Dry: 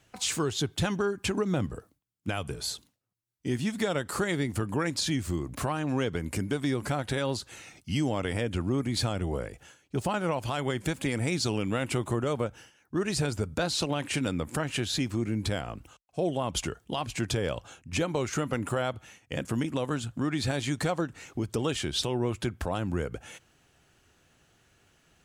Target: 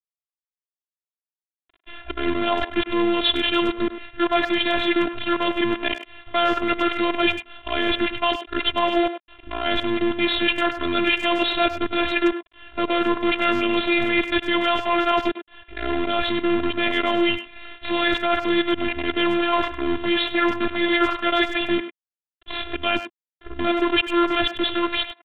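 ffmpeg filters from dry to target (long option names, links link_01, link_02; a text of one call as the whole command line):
ffmpeg -i in.wav -filter_complex "[0:a]areverse,tiltshelf=frequency=1300:gain=-4,dynaudnorm=framelen=440:gausssize=5:maxgain=7dB,aresample=11025,acrusher=bits=5:dc=4:mix=0:aa=0.000001,aresample=44100,afftfilt=real='hypot(re,im)*cos(PI*b)':imag='0':win_size=512:overlap=0.75,aresample=8000,aresample=44100,asplit=2[link_01][link_02];[link_02]adelay=100,highpass=300,lowpass=3400,asoftclip=type=hard:threshold=-20.5dB,volume=-10dB[link_03];[link_01][link_03]amix=inputs=2:normalize=0,volume=7.5dB" out.wav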